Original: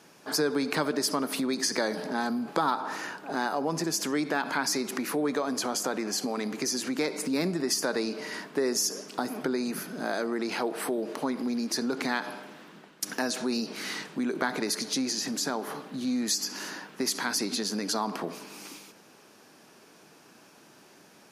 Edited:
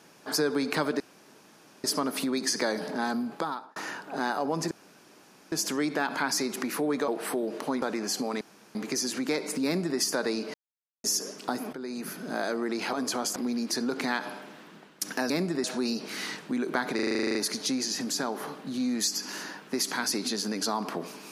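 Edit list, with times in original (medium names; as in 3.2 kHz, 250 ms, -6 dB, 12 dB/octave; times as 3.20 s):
1.00 s: insert room tone 0.84 s
2.35–2.92 s: fade out
3.87 s: insert room tone 0.81 s
5.43–5.86 s: swap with 10.63–11.37 s
6.45 s: insert room tone 0.34 s
7.35–7.69 s: copy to 13.31 s
8.24–8.74 s: mute
9.43–9.93 s: fade in, from -12.5 dB
14.62 s: stutter 0.04 s, 11 plays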